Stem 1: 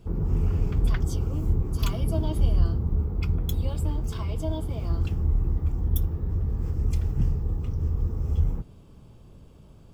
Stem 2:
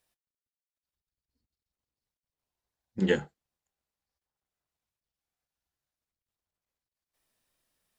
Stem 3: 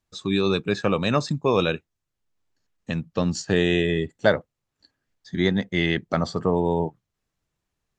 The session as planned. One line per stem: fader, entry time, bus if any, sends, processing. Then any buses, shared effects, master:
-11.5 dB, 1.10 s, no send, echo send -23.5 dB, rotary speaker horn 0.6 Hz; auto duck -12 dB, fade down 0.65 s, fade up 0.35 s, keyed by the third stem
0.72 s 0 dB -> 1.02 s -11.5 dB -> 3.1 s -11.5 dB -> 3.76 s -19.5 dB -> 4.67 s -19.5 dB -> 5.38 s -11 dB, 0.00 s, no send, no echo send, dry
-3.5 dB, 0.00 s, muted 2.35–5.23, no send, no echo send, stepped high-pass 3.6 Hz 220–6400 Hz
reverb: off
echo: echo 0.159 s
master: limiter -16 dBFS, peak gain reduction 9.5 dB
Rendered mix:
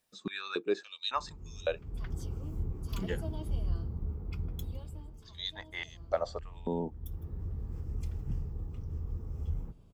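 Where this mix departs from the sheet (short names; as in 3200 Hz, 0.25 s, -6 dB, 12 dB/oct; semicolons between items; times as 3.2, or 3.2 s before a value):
stem 1: missing rotary speaker horn 0.6 Hz; stem 3 -3.5 dB -> -13.0 dB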